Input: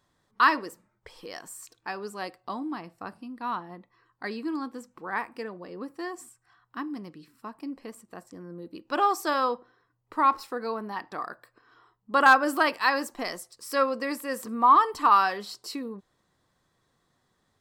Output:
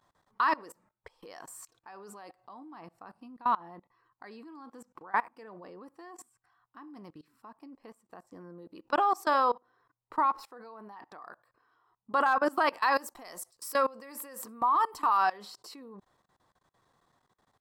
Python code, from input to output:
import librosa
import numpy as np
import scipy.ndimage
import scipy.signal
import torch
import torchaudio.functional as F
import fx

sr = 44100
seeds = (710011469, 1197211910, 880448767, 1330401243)

y = fx.peak_eq(x, sr, hz=880.0, db=8.5, octaves=1.4)
y = fx.level_steps(y, sr, step_db=23)
y = fx.high_shelf(y, sr, hz=7100.0, db=11.5, at=(12.92, 15.17))
y = F.gain(torch.from_numpy(y), -1.5).numpy()